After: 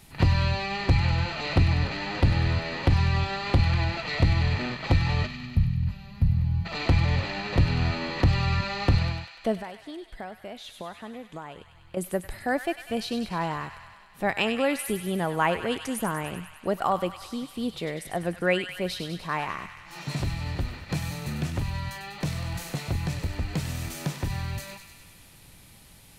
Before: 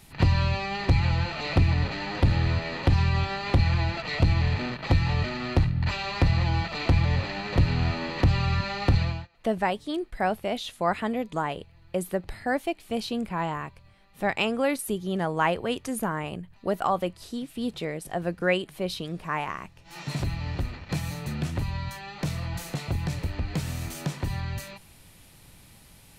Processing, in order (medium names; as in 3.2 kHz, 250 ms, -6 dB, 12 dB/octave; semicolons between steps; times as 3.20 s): 5.27–6.66 s: time-frequency box 240–10000 Hz -21 dB; 9.56–11.97 s: compression 4:1, threshold -38 dBFS, peak gain reduction 16 dB; feedback echo behind a high-pass 98 ms, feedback 70%, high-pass 1.5 kHz, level -7.5 dB